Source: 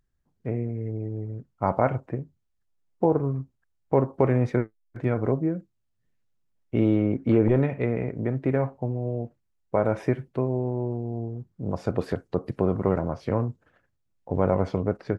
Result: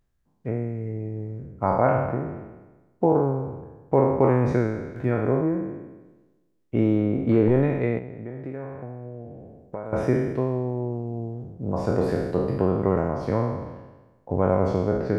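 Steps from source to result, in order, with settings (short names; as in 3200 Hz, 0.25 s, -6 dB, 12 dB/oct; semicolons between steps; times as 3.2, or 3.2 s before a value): spectral trails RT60 1.19 s; dynamic EQ 3100 Hz, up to -5 dB, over -49 dBFS, Q 1.2; 7.98–9.93 compressor 2.5:1, threshold -37 dBFS, peak gain reduction 14 dB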